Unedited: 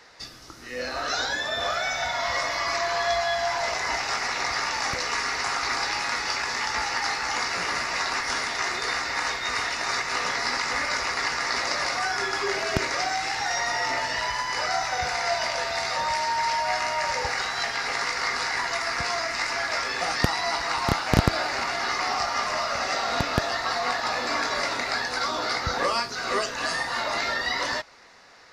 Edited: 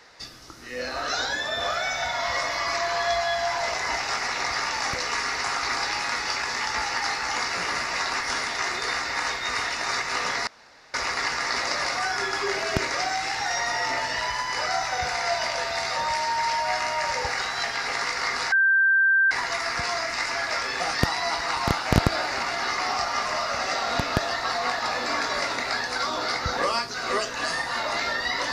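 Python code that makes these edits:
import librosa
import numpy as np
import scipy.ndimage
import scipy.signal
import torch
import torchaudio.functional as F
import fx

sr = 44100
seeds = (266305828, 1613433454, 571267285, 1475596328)

y = fx.edit(x, sr, fx.room_tone_fill(start_s=10.47, length_s=0.47),
    fx.insert_tone(at_s=18.52, length_s=0.79, hz=1570.0, db=-16.0), tone=tone)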